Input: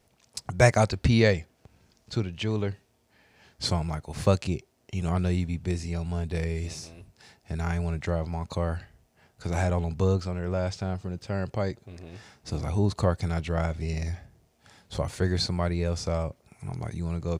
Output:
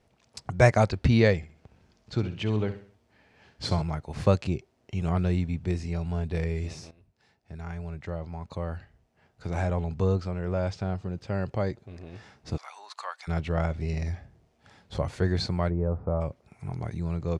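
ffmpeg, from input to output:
ffmpeg -i in.wav -filter_complex "[0:a]asettb=1/sr,asplit=3[link_01][link_02][link_03];[link_01]atrim=end=1.364[link_04];[link_02]atrim=start=1.36:end=3.82,asetpts=PTS-STARTPTS,afade=type=in:duration=0.004:curve=qsin,afade=type=out:start_time=2.456:duration=0.004:curve=qsin,aecho=1:1:65|130|195|260:0.266|0.106|0.0426|0.017,atrim=end_sample=108486[link_05];[link_03]atrim=start=3.816[link_06];[link_04][link_05]acrossfade=duration=0.004:curve1=hsin:curve2=qsin[link_07];[link_07][link_06]acrossfade=duration=0.004:curve1=qsin:curve2=hsin,asplit=3[link_08][link_09][link_10];[link_08]afade=type=out:start_time=12.56:duration=0.02[link_11];[link_09]highpass=frequency=970:width=0.5412,highpass=frequency=970:width=1.3066,afade=type=in:start_time=12.56:duration=0.02,afade=type=out:start_time=13.27:duration=0.02[link_12];[link_10]afade=type=in:start_time=13.27:duration=0.02[link_13];[link_11][link_12][link_13]amix=inputs=3:normalize=0,asplit=3[link_14][link_15][link_16];[link_14]afade=type=out:start_time=15.69:duration=0.02[link_17];[link_15]lowpass=frequency=1200:width=0.5412,lowpass=frequency=1200:width=1.3066,afade=type=in:start_time=15.69:duration=0.02,afade=type=out:start_time=16.2:duration=0.02[link_18];[link_16]afade=type=in:start_time=16.2:duration=0.02[link_19];[link_17][link_18][link_19]amix=inputs=3:normalize=0,asplit=2[link_20][link_21];[link_20]atrim=end=6.91,asetpts=PTS-STARTPTS,afade=type=out:start_time=6.906:duration=0.004:curve=hsin:silence=0.211349[link_22];[link_21]atrim=start=6.91,asetpts=PTS-STARTPTS,afade=type=in:duration=3.85:silence=0.211349[link_23];[link_22][link_23]concat=n=2:v=0:a=1,aemphasis=mode=reproduction:type=50fm" out.wav

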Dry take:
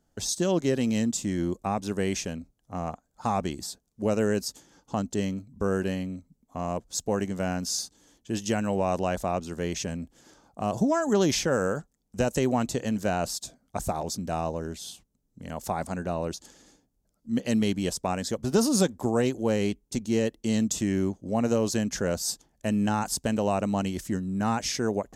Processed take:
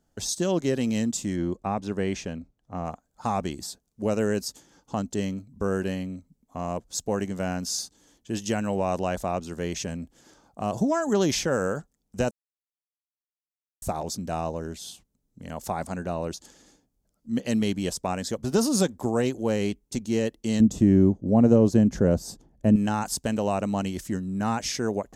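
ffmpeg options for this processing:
ffmpeg -i in.wav -filter_complex "[0:a]asettb=1/sr,asplit=3[link_01][link_02][link_03];[link_01]atrim=end=1.364[link_04];[link_02]atrim=start=1.36:end=2.85,asetpts=PTS-STARTPTS,afade=type=in:duration=0.004:curve=qsin,afade=type=out:start_time=1.486:duration=0.004:curve=qsin,aemphasis=mode=reproduction:type=50fm[link_05];[link_03]atrim=start=2.846[link_06];[link_04][link_05]acrossfade=duration=0.004:curve1=hsin:curve2=qsin[link_07];[link_07][link_06]acrossfade=duration=0.004:curve1=qsin:curve2=hsin,asettb=1/sr,asplit=3[link_08][link_09][link_10];[link_08]atrim=end=20.604[link_11];[link_09]atrim=start=20.6:end=22.76,asetpts=PTS-STARTPTS,afade=type=in:duration=0.004:curve=qsin,afade=type=out:start_time=2.156:duration=0.004:curve=qsin,tiltshelf=frequency=920:gain=10[link_12];[link_10]atrim=start=22.756[link_13];[link_11][link_12]acrossfade=duration=0.004:curve1=hsin:curve2=qsin[link_14];[link_14][link_13]acrossfade=duration=0.004:curve1=qsin:curve2=hsin,asplit=3[link_15][link_16][link_17];[link_15]atrim=end=12.31,asetpts=PTS-STARTPTS,afade=type=out:start_time=12.306:duration=0.004:curve=hsin[link_18];[link_16]atrim=start=12.31:end=13.82,asetpts=PTS-STARTPTS,volume=0[link_19];[link_17]atrim=start=13.82,asetpts=PTS-STARTPTS,afade=type=in:duration=0.004:curve=hsin[link_20];[link_18][link_19][link_20]concat=n=3:v=0:a=1" out.wav

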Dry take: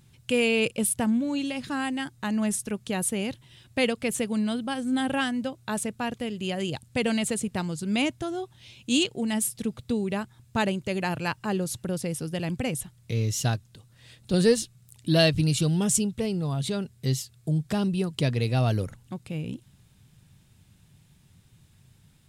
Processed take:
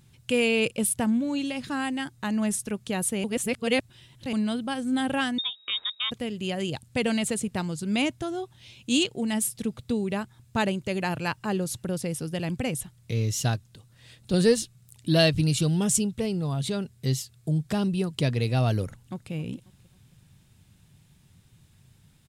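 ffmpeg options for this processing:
ffmpeg -i in.wav -filter_complex "[0:a]asettb=1/sr,asplit=3[link_01][link_02][link_03];[link_01]atrim=end=5.384[link_04];[link_02]atrim=start=5.38:end=6.11,asetpts=PTS-STARTPTS,afade=type=in:duration=0.004:curve=qsin,afade=type=out:start_time=0.726:duration=0.004:curve=qsin,lowpass=frequency=3300:width_type=q:width=0.5098,lowpass=frequency=3300:width_type=q:width=0.6013,lowpass=frequency=3300:width_type=q:width=0.9,lowpass=frequency=3300:width_type=q:width=2.563,afreqshift=-3900[link_05];[link_03]atrim=start=6.106[link_06];[link_04][link_05]acrossfade=duration=0.004:curve1=hsin:curve2=qsin[link_07];[link_07][link_06]acrossfade=duration=0.004:curve1=qsin:curve2=hsin,asplit=2[link_08][link_09];[link_09]afade=type=in:start_time=18.86:duration=0.01,afade=type=out:start_time=19.32:duration=0.01,aecho=0:1:270|540|810:0.141254|0.0565015|0.0226006[link_10];[link_08][link_10]amix=inputs=2:normalize=0,asplit=3[link_11][link_12][link_13];[link_11]atrim=end=3.242[link_14];[link_12]atrim=start=3.238:end=4.332,asetpts=PTS-STARTPTS,areverse[link_15];[link_13]atrim=start=4.328[link_16];[link_14][link_15]acrossfade=duration=0.004:curve1=hsin:curve2=hsin[link_17];[link_17][link_16]acrossfade=duration=0.004:curve1=hsin:curve2=hsin" out.wav

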